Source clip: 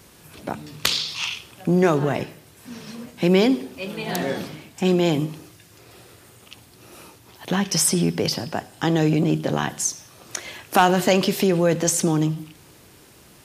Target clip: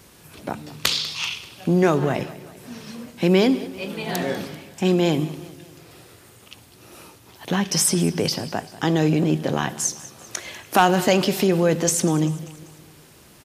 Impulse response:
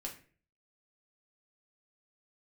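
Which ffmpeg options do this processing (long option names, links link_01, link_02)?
-af "aecho=1:1:195|390|585|780:0.126|0.0667|0.0354|0.0187"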